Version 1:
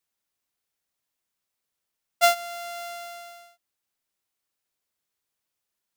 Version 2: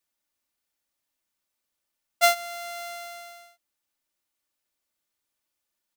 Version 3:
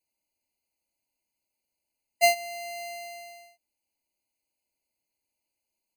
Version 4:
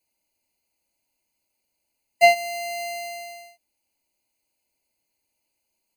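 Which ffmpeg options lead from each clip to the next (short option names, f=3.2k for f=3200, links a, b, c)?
-af "aecho=1:1:3.4:0.4"
-af "afftfilt=real='re*eq(mod(floor(b*sr/1024/1000),2),0)':imag='im*eq(mod(floor(b*sr/1024/1000),2),0)':win_size=1024:overlap=0.75"
-filter_complex "[0:a]acrossover=split=3900[a][b];[b]acompressor=threshold=-38dB:ratio=4:attack=1:release=60[c];[a][c]amix=inputs=2:normalize=0,volume=7dB"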